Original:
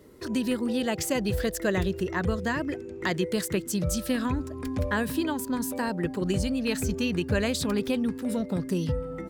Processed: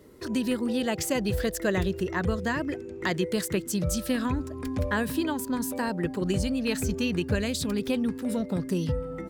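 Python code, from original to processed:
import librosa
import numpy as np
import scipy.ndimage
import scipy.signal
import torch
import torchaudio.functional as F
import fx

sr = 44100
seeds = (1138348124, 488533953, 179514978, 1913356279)

y = fx.peak_eq(x, sr, hz=960.0, db=-7.0, octaves=2.1, at=(7.35, 7.86))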